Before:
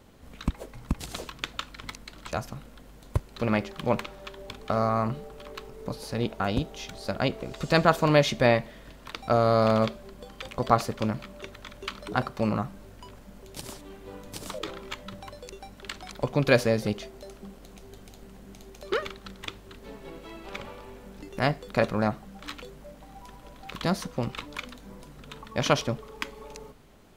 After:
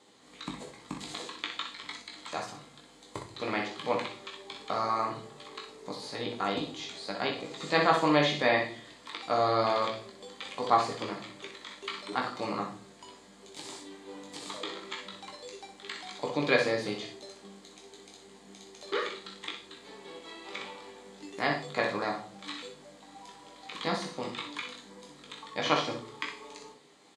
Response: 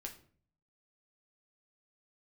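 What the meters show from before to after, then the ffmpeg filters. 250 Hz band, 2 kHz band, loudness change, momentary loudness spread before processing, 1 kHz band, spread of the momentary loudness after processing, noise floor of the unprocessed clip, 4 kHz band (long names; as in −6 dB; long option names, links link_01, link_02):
−6.0 dB, −1.0 dB, −4.0 dB, 23 LU, −1.0 dB, 22 LU, −50 dBFS, +0.5 dB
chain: -filter_complex "[0:a]highpass=330,equalizer=frequency=400:width_type=q:width=4:gain=-3,equalizer=frequency=590:width_type=q:width=4:gain=-7,equalizer=frequency=1500:width_type=q:width=4:gain=-9,equalizer=frequency=2700:width_type=q:width=4:gain=-8,equalizer=frequency=5600:width_type=q:width=4:gain=-10,lowpass=frequency=8100:width=0.5412,lowpass=frequency=8100:width=1.3066,acrossover=split=6000[link_01][link_02];[link_01]crystalizer=i=4:c=0[link_03];[link_02]acontrast=74[link_04];[link_03][link_04]amix=inputs=2:normalize=0[link_05];[1:a]atrim=start_sample=2205[link_06];[link_05][link_06]afir=irnorm=-1:irlink=0,acrossover=split=3400[link_07][link_08];[link_08]acompressor=threshold=-47dB:ratio=4:attack=1:release=60[link_09];[link_07][link_09]amix=inputs=2:normalize=0,aecho=1:1:20|62:0.501|0.422,volume=2.5dB"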